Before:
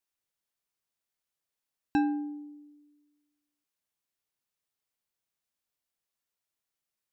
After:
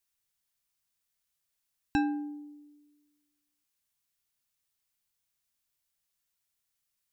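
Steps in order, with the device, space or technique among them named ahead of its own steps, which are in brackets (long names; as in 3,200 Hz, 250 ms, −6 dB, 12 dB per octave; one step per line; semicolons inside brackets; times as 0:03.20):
smiley-face EQ (low-shelf EQ 110 Hz +5.5 dB; parametric band 440 Hz −7 dB 2.2 octaves; high-shelf EQ 5,000 Hz +4.5 dB)
level +3 dB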